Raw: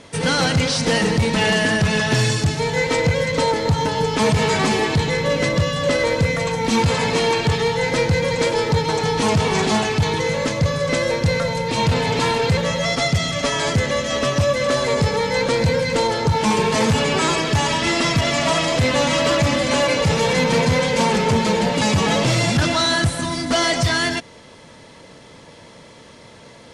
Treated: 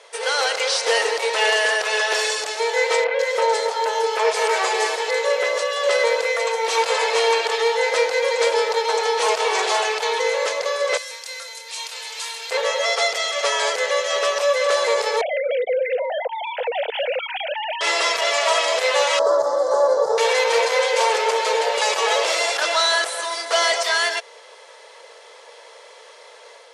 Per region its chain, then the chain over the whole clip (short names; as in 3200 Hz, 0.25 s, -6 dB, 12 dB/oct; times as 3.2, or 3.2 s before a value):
3.04–5.72 notch 1100 Hz, Q 28 + three bands offset in time mids, highs, lows 0.15/0.2 s, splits 180/3300 Hz
10.97–12.51 HPF 350 Hz + differentiator + doubler 27 ms -11 dB
15.21–17.81 sine-wave speech + compressor 12:1, threshold -18 dBFS + fixed phaser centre 310 Hz, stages 6
19.19–20.18 Chebyshev band-stop 1200–5200 Hz + tilt -4 dB/oct
whole clip: elliptic high-pass 450 Hz, stop band 50 dB; AGC gain up to 3 dB; gain -1.5 dB